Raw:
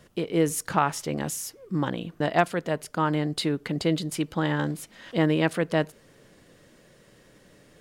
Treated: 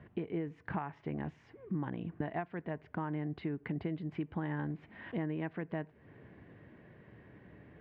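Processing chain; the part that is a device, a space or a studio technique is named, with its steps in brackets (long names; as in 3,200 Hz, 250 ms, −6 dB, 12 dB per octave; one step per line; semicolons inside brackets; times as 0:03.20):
bass amplifier (downward compressor 5 to 1, threshold −35 dBFS, peak gain reduction 17.5 dB; loudspeaker in its box 63–2,100 Hz, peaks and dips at 74 Hz +9 dB, 110 Hz +5 dB, 530 Hz −9 dB, 1,300 Hz −8 dB)
level +1 dB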